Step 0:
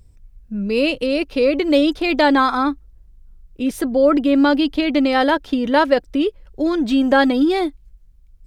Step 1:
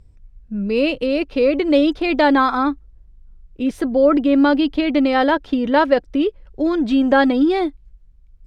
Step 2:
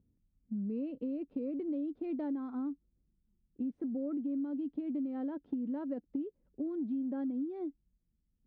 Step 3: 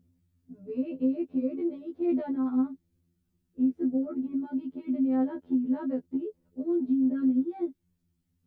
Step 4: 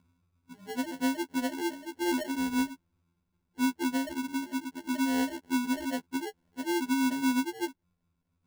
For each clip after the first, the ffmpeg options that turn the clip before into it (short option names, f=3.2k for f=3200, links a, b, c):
-af "aemphasis=mode=reproduction:type=50fm"
-af "bandpass=f=240:t=q:w=2.8:csg=0,acompressor=threshold=-28dB:ratio=6,volume=-6dB"
-af "afftfilt=real='re*2*eq(mod(b,4),0)':imag='im*2*eq(mod(b,4),0)':win_size=2048:overlap=0.75,volume=9dB"
-af "acrusher=samples=36:mix=1:aa=0.000001,volume=-2.5dB"